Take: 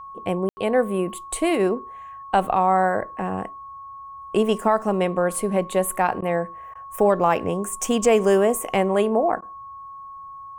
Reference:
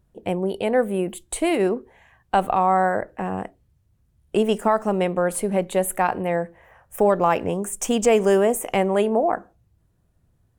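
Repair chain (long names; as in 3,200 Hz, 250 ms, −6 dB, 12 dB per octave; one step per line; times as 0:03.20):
notch filter 1,100 Hz, Q 30
ambience match 0:00.49–0:00.57
repair the gap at 0:06.21/0:06.74/0:09.41, 11 ms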